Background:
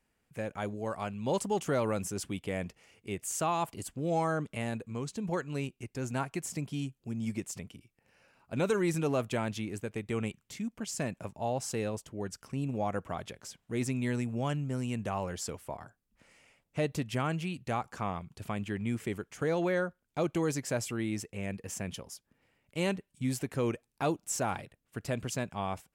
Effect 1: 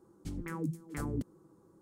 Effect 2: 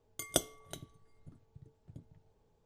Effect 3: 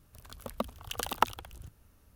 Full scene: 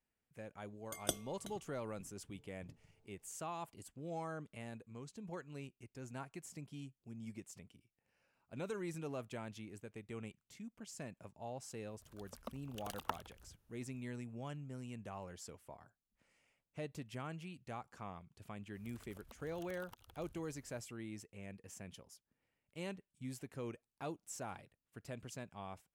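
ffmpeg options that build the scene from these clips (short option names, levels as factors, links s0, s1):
-filter_complex "[3:a]asplit=2[s0][s1];[0:a]volume=0.211[s2];[s1]acompressor=threshold=0.00316:ratio=6:attack=3.2:release=140:knee=1:detection=peak[s3];[2:a]atrim=end=2.65,asetpts=PTS-STARTPTS,volume=0.473,afade=t=in:d=0.004:c=hsin,afade=t=out:st=2.646:d=0.004:c=hsin,adelay=730[s4];[s0]atrim=end=2.15,asetpts=PTS-STARTPTS,volume=0.2,afade=t=in:d=0.004:c=hsin,afade=t=out:st=2.146:d=0.004:c=hsin,adelay=11870[s5];[s3]atrim=end=2.15,asetpts=PTS-STARTPTS,volume=0.501,afade=t=in:d=0.05,afade=t=out:st=2.1:d=0.05,adelay=18710[s6];[s2][s4][s5][s6]amix=inputs=4:normalize=0"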